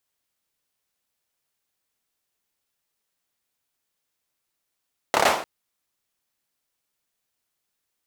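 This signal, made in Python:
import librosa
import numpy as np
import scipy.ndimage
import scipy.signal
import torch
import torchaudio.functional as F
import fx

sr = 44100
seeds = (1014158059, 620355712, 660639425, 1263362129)

y = fx.drum_clap(sr, seeds[0], length_s=0.3, bursts=5, spacing_ms=28, hz=720.0, decay_s=0.48)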